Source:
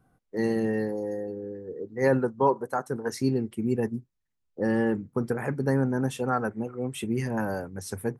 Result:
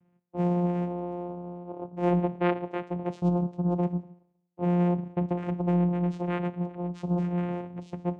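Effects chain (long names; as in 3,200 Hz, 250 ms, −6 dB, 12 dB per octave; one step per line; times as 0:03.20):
high-shelf EQ 4,300 Hz −8 dB
convolution reverb RT60 0.75 s, pre-delay 9 ms, DRR 11.5 dB
channel vocoder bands 4, saw 176 Hz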